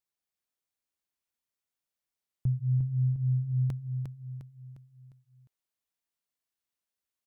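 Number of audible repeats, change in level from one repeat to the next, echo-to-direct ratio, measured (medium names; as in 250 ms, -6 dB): 5, -7.0 dB, -5.0 dB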